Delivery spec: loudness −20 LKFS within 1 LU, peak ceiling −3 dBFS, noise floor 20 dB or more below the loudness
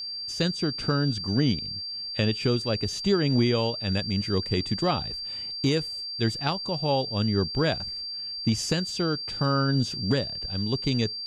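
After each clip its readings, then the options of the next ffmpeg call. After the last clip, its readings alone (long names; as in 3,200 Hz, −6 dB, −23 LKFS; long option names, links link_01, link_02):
interfering tone 4,700 Hz; level of the tone −32 dBFS; integrated loudness −26.5 LKFS; sample peak −11.5 dBFS; target loudness −20.0 LKFS
→ -af "bandreject=frequency=4700:width=30"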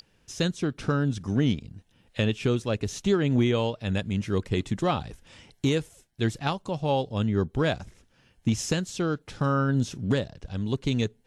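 interfering tone none found; integrated loudness −27.5 LKFS; sample peak −12.0 dBFS; target loudness −20.0 LKFS
→ -af "volume=7.5dB"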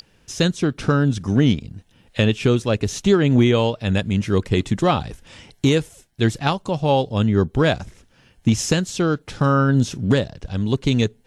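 integrated loudness −20.0 LKFS; sample peak −4.5 dBFS; background noise floor −57 dBFS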